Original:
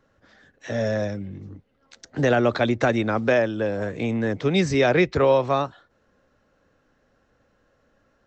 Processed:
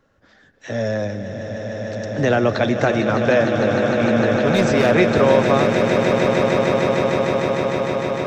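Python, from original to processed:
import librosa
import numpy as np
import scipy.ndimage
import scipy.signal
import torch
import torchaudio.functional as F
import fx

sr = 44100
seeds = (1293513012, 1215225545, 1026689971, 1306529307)

y = fx.overload_stage(x, sr, gain_db=16.5, at=(4.26, 4.94))
y = fx.echo_swell(y, sr, ms=152, loudest=8, wet_db=-9.0)
y = F.gain(torch.from_numpy(y), 2.0).numpy()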